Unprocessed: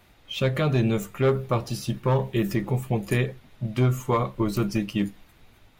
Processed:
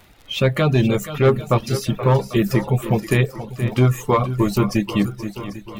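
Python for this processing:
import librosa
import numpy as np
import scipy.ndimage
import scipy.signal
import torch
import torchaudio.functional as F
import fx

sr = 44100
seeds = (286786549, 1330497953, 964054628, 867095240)

y = fx.dmg_crackle(x, sr, seeds[0], per_s=37.0, level_db=-38.0)
y = fx.echo_swing(y, sr, ms=793, ratio=1.5, feedback_pct=41, wet_db=-11.5)
y = fx.dereverb_blind(y, sr, rt60_s=0.51)
y = F.gain(torch.from_numpy(y), 6.5).numpy()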